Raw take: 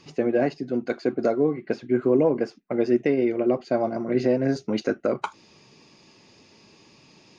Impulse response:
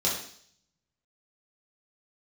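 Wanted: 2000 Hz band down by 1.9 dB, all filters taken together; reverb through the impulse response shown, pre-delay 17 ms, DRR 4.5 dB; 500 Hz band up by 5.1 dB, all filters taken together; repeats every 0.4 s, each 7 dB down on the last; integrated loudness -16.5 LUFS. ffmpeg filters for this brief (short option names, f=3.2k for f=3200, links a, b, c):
-filter_complex "[0:a]equalizer=f=500:t=o:g=6.5,equalizer=f=2k:t=o:g=-3,aecho=1:1:400|800|1200|1600|2000:0.447|0.201|0.0905|0.0407|0.0183,asplit=2[a][b];[1:a]atrim=start_sample=2205,adelay=17[c];[b][c]afir=irnorm=-1:irlink=0,volume=-14dB[d];[a][d]amix=inputs=2:normalize=0,volume=0.5dB"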